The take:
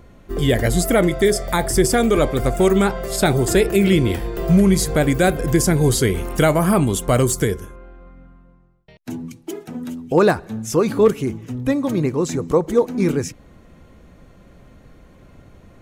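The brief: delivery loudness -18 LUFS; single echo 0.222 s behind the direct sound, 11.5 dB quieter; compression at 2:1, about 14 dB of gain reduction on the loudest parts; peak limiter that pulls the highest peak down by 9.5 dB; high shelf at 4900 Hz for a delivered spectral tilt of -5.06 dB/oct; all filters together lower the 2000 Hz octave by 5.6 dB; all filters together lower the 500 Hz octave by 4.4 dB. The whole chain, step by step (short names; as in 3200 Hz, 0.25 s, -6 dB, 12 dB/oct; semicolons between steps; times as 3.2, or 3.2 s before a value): bell 500 Hz -5.5 dB; bell 2000 Hz -8 dB; high shelf 4900 Hz +6.5 dB; compressor 2:1, threshold -38 dBFS; limiter -23.5 dBFS; echo 0.222 s -11.5 dB; gain +15.5 dB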